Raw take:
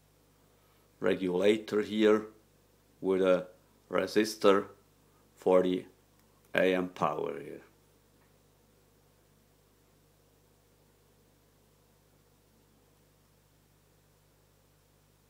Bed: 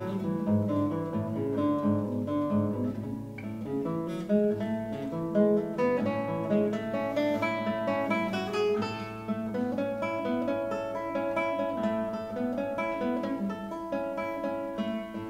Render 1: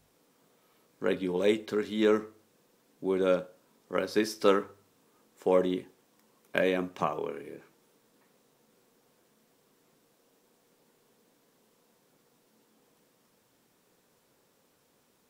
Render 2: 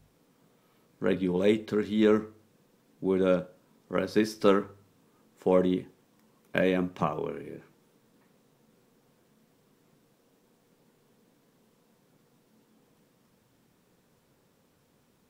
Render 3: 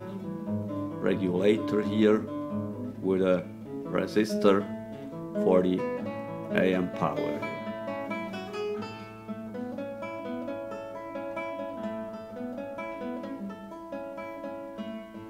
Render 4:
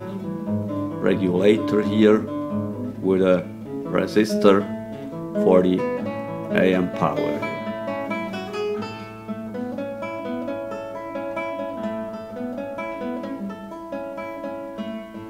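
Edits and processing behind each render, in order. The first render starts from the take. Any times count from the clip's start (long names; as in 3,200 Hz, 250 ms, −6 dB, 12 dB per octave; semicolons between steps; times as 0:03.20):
hum removal 50 Hz, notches 3
bass and treble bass +9 dB, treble −3 dB
mix in bed −5.5 dB
level +7 dB; brickwall limiter −2 dBFS, peak gain reduction 1.5 dB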